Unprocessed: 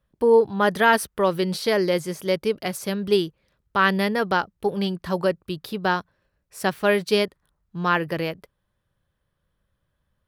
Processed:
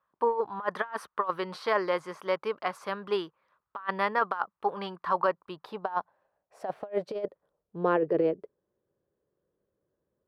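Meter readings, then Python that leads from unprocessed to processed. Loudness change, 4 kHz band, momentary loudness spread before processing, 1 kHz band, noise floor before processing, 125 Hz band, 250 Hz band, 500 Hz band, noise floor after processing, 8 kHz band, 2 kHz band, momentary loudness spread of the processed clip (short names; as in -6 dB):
-8.0 dB, -14.0 dB, 10 LU, -5.0 dB, -76 dBFS, -14.5 dB, -11.0 dB, -8.0 dB, under -85 dBFS, under -20 dB, -11.0 dB, 12 LU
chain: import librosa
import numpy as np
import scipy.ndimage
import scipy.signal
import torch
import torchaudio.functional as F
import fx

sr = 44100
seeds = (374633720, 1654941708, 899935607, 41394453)

y = fx.filter_sweep_bandpass(x, sr, from_hz=1100.0, to_hz=400.0, start_s=5.17, end_s=8.33, q=3.7)
y = fx.over_compress(y, sr, threshold_db=-32.0, ratio=-0.5)
y = F.gain(torch.from_numpy(y), 5.5).numpy()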